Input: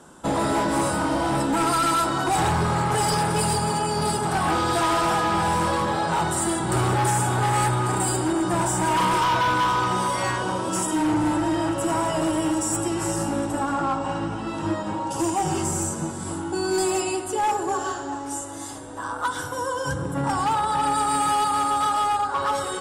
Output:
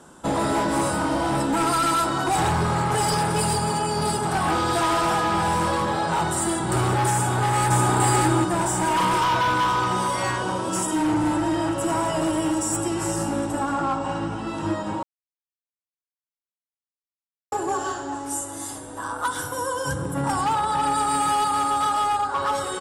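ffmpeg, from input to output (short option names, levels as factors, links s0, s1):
-filter_complex "[0:a]asplit=2[s0][s1];[s1]afade=t=in:st=7.11:d=0.01,afade=t=out:st=7.85:d=0.01,aecho=0:1:590|1180|1770:1|0.15|0.0225[s2];[s0][s2]amix=inputs=2:normalize=0,asettb=1/sr,asplit=3[s3][s4][s5];[s3]atrim=end=18.144[s6];[s4]atrim=start=18.14:end=20.41,asetpts=PTS-STARTPTS,afade=t=in:d=0.004:c=qsin,afade=t=out:st=2.266:d=0.004:c=qsin,equalizer=f=11000:w=1.5:g=9[s7];[s5]atrim=start=20.406[s8];[s6][s7]acrossfade=d=0.004:c1=hsin:c2=qsin[s9];[s9][s8]acrossfade=d=0.004:c1=qsin:c2=hsin,asplit=3[s10][s11][s12];[s10]atrim=end=15.03,asetpts=PTS-STARTPTS,afade=t=out:st=15.026:d=0.004:c=hsin[s13];[s11]atrim=start=15.03:end=17.52,asetpts=PTS-STARTPTS,volume=0[s14];[s12]atrim=start=17.52,asetpts=PTS-STARTPTS,afade=t=in:d=0.004:c=hsin[s15];[s13][s14][s15]concat=n=3:v=0:a=1"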